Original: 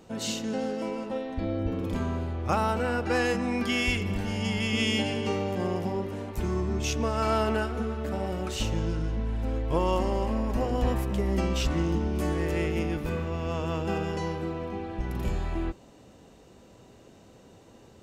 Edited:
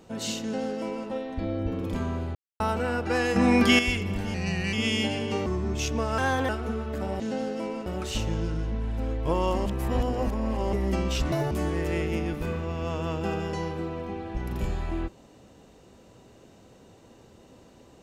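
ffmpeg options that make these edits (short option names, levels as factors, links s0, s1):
-filter_complex "[0:a]asplit=16[s0][s1][s2][s3][s4][s5][s6][s7][s8][s9][s10][s11][s12][s13][s14][s15];[s0]atrim=end=2.35,asetpts=PTS-STARTPTS,afade=t=out:st=2.346:d=0.004:c=hsin[s16];[s1]atrim=start=2.35:end=2.6,asetpts=PTS-STARTPTS,volume=0[s17];[s2]atrim=start=2.6:end=3.362,asetpts=PTS-STARTPTS,afade=t=in:d=0.004:c=hsin[s18];[s3]atrim=start=3.358:end=3.792,asetpts=PTS-STARTPTS,volume=2.66[s19];[s4]atrim=start=3.788:end=4.344[s20];[s5]atrim=start=4.34:end=4.68,asetpts=PTS-STARTPTS,asetrate=38367,aresample=44100,atrim=end_sample=17234,asetpts=PTS-STARTPTS[s21];[s6]atrim=start=4.676:end=5.412[s22];[s7]atrim=start=6.508:end=7.234[s23];[s8]atrim=start=7.23:end=7.6,asetpts=PTS-STARTPTS,asetrate=52920,aresample=44100[s24];[s9]atrim=start=7.596:end=8.312[s25];[s10]atrim=start=0.418:end=1.082[s26];[s11]atrim=start=8.308:end=10.112[s27];[s12]atrim=start=10.108:end=11.182,asetpts=PTS-STARTPTS,areverse[s28];[s13]atrim=start=11.178:end=11.774[s29];[s14]atrim=start=11.77:end=12.15,asetpts=PTS-STARTPTS,asetrate=86877,aresample=44100[s30];[s15]atrim=start=12.146[s31];[s16][s17][s18]concat=n=3:v=0:a=1[s32];[s32][s19]acrossfade=d=0.004:c1=hsin:c2=hsin[s33];[s33][s20]acrossfade=d=0.004:c1=hsin:c2=hsin[s34];[s34][s21]acrossfade=d=0.004:c1=hsin:c2=hsin[s35];[s35][s22]acrossfade=d=0.004:c1=hsin:c2=hsin[s36];[s36][s23]acrossfade=d=0.004:c1=hsin:c2=hsin[s37];[s37][s24]acrossfade=d=0.004:c1=hsin:c2=hsin[s38];[s38][s25]acrossfade=d=0.004:c1=hsin:c2=hsin[s39];[s39][s26]acrossfade=d=0.004:c1=hsin:c2=hsin[s40];[s40][s27]acrossfade=d=0.004:c1=hsin:c2=hsin[s41];[s41][s28]acrossfade=d=0.004:c1=hsin:c2=hsin[s42];[s42][s29]acrossfade=d=0.004:c1=hsin:c2=hsin[s43];[s43][s30]acrossfade=d=0.004:c1=hsin:c2=hsin[s44];[s44][s31]acrossfade=d=0.004:c1=hsin:c2=hsin"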